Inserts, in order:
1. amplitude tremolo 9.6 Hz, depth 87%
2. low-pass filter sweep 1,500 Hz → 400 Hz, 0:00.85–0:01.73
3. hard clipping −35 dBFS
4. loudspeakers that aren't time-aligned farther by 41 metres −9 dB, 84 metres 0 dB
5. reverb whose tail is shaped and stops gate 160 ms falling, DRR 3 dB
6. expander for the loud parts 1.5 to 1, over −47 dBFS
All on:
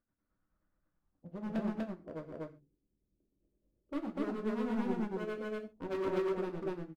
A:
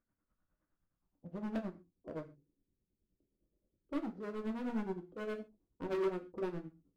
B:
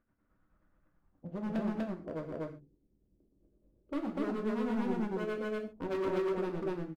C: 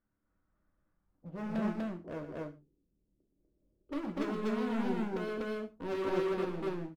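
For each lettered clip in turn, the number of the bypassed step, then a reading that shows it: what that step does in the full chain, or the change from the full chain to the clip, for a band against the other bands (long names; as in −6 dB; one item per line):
4, change in momentary loudness spread +1 LU
6, change in momentary loudness spread −3 LU
1, 4 kHz band +2.5 dB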